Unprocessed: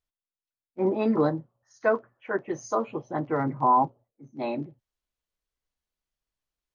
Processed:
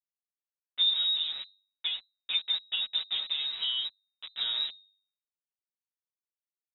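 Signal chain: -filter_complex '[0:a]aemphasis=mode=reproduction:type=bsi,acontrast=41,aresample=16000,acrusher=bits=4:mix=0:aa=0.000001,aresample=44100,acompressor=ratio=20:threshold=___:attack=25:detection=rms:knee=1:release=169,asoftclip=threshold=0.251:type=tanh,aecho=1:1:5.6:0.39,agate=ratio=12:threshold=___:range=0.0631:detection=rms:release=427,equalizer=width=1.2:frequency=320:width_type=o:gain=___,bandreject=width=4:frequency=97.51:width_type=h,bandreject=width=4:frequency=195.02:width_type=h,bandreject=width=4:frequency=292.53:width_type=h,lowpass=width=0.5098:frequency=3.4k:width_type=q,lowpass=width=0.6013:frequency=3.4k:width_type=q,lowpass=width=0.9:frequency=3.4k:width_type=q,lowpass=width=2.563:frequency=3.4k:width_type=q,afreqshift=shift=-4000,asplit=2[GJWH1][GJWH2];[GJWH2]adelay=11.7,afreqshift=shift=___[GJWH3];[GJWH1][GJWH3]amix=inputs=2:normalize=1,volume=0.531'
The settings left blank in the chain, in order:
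0.1, 0.0112, 4, 0.53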